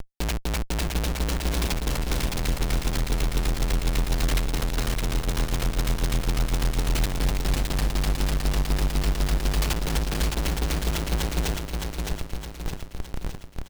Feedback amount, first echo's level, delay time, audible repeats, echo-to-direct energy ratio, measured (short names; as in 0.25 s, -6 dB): 52%, -4.0 dB, 0.614 s, 6, -2.5 dB